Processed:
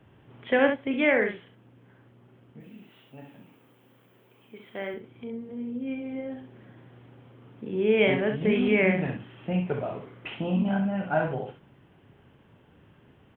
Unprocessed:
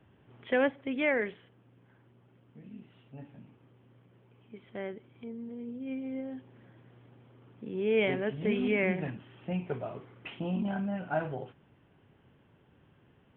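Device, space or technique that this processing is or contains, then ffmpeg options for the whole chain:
slapback doubling: -filter_complex "[0:a]asettb=1/sr,asplit=3[a][b][c];[a]atrim=end=2.604[d];[b]atrim=start=2.6:end=4.94,asetpts=PTS-STARTPTS,afade=t=in:d=0.004:c=qsin,afade=t=out:st=2.336:d=0.004:c=qsin,aemphasis=mode=production:type=bsi[e];[c]atrim=start=4.936[f];[d][e]acrossfade=d=0.004:c1=hsin:c2=qsin[g];[g][f]acrossfade=d=0.004:c1=qsin:c2=hsin,asplit=3[h][i][j];[i]adelay=37,volume=-9dB[k];[j]adelay=66,volume=-7dB[l];[h][k][l]amix=inputs=3:normalize=0,volume=5dB"

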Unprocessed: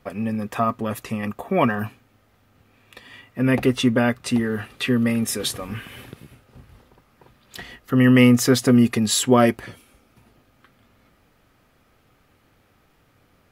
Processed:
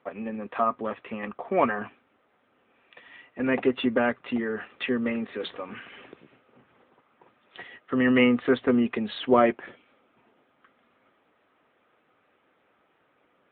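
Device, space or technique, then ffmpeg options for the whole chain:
telephone: -af "highpass=320,lowpass=3.1k,volume=-1.5dB" -ar 8000 -c:a libopencore_amrnb -b:a 10200

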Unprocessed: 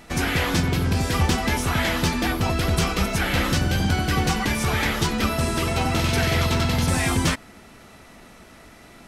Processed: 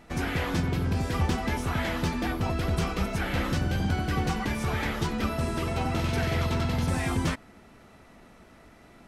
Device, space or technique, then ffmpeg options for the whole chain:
behind a face mask: -af "highshelf=f=2.4k:g=-8,volume=-5dB"

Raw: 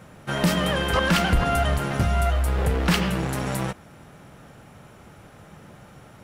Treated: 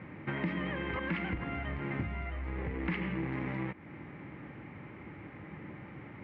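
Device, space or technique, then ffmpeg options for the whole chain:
bass amplifier: -af "acompressor=threshold=-34dB:ratio=4,highpass=74,equalizer=f=310:t=q:w=4:g=9,equalizer=f=470:t=q:w=4:g=-3,equalizer=f=670:t=q:w=4:g=-9,equalizer=f=1.4k:t=q:w=4:g=-7,equalizer=f=2.1k:t=q:w=4:g=10,lowpass=f=2.4k:w=0.5412,lowpass=f=2.4k:w=1.3066"

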